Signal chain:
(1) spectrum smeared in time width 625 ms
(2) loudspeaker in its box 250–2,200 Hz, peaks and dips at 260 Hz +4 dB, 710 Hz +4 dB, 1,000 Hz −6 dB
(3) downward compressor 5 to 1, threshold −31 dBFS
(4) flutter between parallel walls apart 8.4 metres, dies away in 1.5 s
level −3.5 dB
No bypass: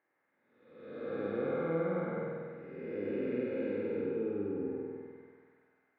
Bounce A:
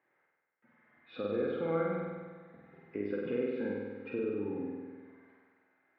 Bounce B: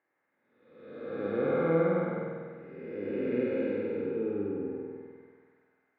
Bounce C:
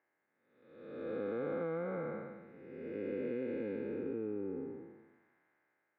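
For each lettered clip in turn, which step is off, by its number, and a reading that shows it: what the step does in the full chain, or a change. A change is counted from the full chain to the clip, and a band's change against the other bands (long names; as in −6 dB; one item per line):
1, change in crest factor +2.5 dB
3, average gain reduction 2.0 dB
4, echo-to-direct ratio 2.5 dB to none audible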